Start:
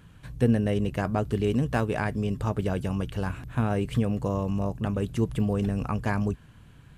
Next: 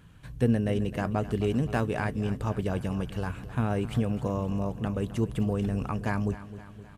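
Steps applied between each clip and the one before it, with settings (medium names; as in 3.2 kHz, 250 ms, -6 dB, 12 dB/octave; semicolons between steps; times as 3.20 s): feedback delay 260 ms, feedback 58%, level -15 dB; trim -2 dB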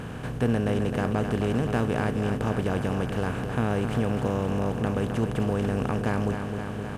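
spectral levelling over time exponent 0.4; trim -3 dB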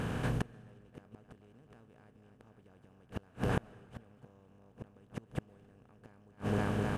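inverted gate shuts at -18 dBFS, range -35 dB; on a send at -23 dB: reverberation RT60 1.7 s, pre-delay 96 ms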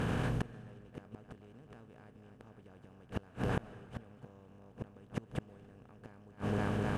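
treble shelf 10 kHz -6.5 dB; in parallel at -2.5 dB: compressor with a negative ratio -37 dBFS, ratio -0.5; on the sum: trim -3 dB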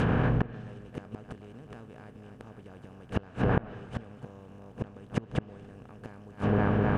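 low-pass that closes with the level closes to 2.1 kHz, closed at -31.5 dBFS; trim +8.5 dB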